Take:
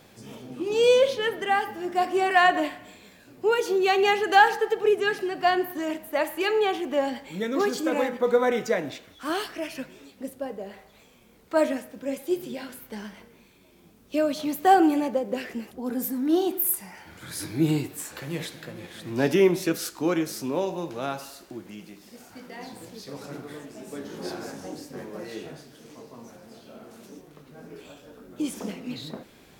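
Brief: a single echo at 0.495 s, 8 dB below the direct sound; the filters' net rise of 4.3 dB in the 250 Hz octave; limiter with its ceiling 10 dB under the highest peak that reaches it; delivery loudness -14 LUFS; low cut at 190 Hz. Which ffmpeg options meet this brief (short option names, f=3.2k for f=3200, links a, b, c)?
-af "highpass=190,equalizer=f=250:t=o:g=7,alimiter=limit=-15dB:level=0:latency=1,aecho=1:1:495:0.398,volume=12dB"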